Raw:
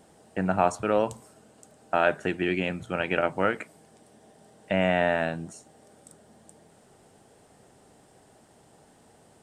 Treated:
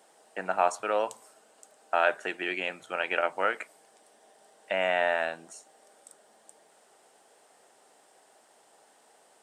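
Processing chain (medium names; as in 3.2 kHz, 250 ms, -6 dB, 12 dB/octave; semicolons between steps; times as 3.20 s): high-pass 580 Hz 12 dB/octave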